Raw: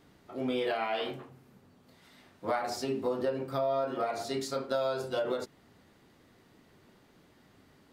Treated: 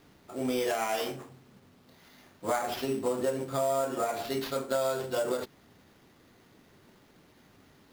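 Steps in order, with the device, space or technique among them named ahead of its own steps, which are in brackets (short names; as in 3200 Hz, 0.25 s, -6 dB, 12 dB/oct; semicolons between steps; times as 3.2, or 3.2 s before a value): early companding sampler (sample-rate reducer 8300 Hz, jitter 0%; companded quantiser 6-bit); gain +1.5 dB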